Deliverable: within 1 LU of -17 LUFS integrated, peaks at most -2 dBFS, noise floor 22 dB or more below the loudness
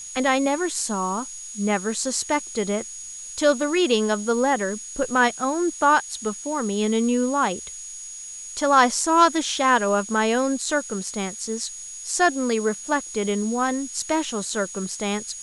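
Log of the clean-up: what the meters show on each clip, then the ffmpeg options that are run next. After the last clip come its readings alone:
steady tone 6.7 kHz; tone level -35 dBFS; noise floor -37 dBFS; noise floor target -45 dBFS; loudness -23.0 LUFS; peak level -4.0 dBFS; loudness target -17.0 LUFS
-> -af "bandreject=f=6700:w=30"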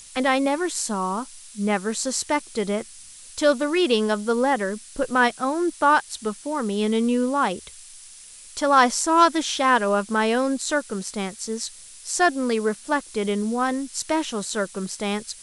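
steady tone not found; noise floor -44 dBFS; noise floor target -45 dBFS
-> -af "afftdn=nr=6:nf=-44"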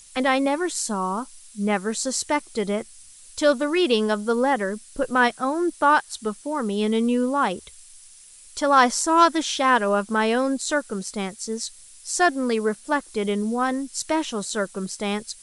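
noise floor -48 dBFS; loudness -23.0 LUFS; peak level -4.5 dBFS; loudness target -17.0 LUFS
-> -af "volume=2,alimiter=limit=0.794:level=0:latency=1"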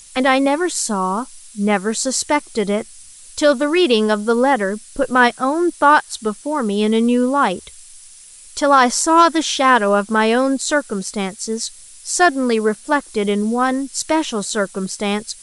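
loudness -17.0 LUFS; peak level -2.0 dBFS; noise floor -42 dBFS

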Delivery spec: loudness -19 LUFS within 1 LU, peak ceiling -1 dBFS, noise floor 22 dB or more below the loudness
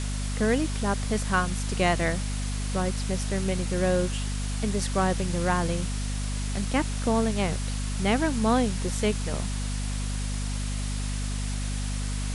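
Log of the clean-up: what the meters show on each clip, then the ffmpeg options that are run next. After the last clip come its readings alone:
hum 50 Hz; highest harmonic 250 Hz; hum level -27 dBFS; noise floor -30 dBFS; noise floor target -50 dBFS; loudness -28.0 LUFS; peak level -10.0 dBFS; loudness target -19.0 LUFS
-> -af "bandreject=f=50:t=h:w=6,bandreject=f=100:t=h:w=6,bandreject=f=150:t=h:w=6,bandreject=f=200:t=h:w=6,bandreject=f=250:t=h:w=6"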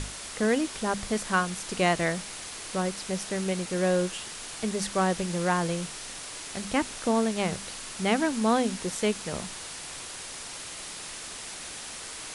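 hum not found; noise floor -40 dBFS; noise floor target -52 dBFS
-> -af "afftdn=nr=12:nf=-40"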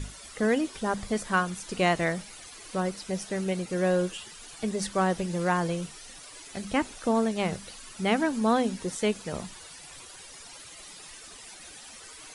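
noise floor -47 dBFS; noise floor target -51 dBFS
-> -af "afftdn=nr=6:nf=-47"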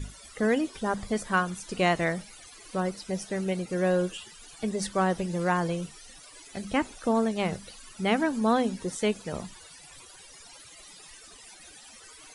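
noise floor -50 dBFS; noise floor target -51 dBFS
-> -af "afftdn=nr=6:nf=-50"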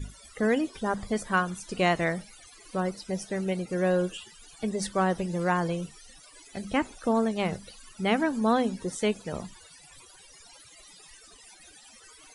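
noise floor -53 dBFS; loudness -28.5 LUFS; peak level -11.5 dBFS; loudness target -19.0 LUFS
-> -af "volume=2.99"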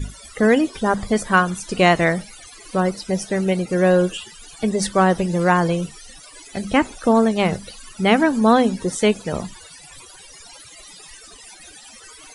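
loudness -19.0 LUFS; peak level -2.0 dBFS; noise floor -44 dBFS

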